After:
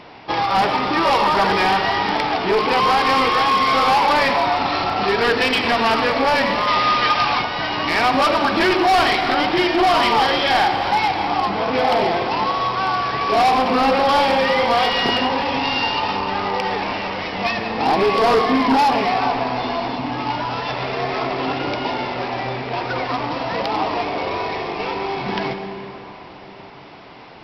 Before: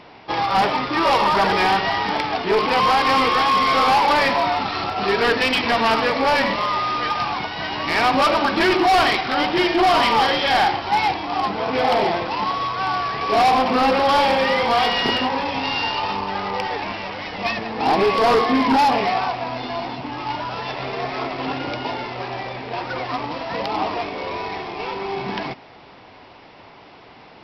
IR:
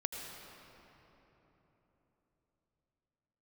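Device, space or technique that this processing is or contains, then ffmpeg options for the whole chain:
ducked reverb: -filter_complex "[0:a]asplit=3[link_01][link_02][link_03];[1:a]atrim=start_sample=2205[link_04];[link_02][link_04]afir=irnorm=-1:irlink=0[link_05];[link_03]apad=whole_len=1210037[link_06];[link_05][link_06]sidechaincompress=threshold=-21dB:ratio=8:attack=16:release=230,volume=0dB[link_07];[link_01][link_07]amix=inputs=2:normalize=0,asettb=1/sr,asplit=3[link_08][link_09][link_10];[link_08]atrim=end=6.674[link_11];[link_09]atrim=start=6.67:end=7.42,asetpts=PTS-STARTPTS,afade=type=in:duration=0.004:curve=qsin,afade=type=out:start_time=0.746:duration=0.004:curve=qsin,equalizer=frequency=3300:width=0.41:gain=5.5[link_12];[link_10]atrim=start=7.416[link_13];[link_11][link_12]acrossfade=duration=0.004:curve1=hsin:curve2=qsin[link_14];[link_14][link_13]acrossfade=duration=0.004:curve1=qsin:curve2=hsin,volume=-2.5dB"

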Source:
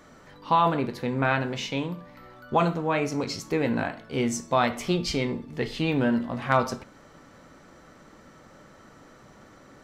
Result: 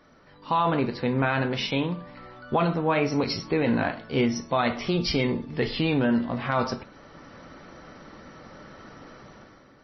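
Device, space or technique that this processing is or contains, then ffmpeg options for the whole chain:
low-bitrate web radio: -af "dynaudnorm=framelen=100:gausssize=11:maxgain=10.5dB,alimiter=limit=-9dB:level=0:latency=1:release=29,volume=-4.5dB" -ar 22050 -c:a libmp3lame -b:a 24k

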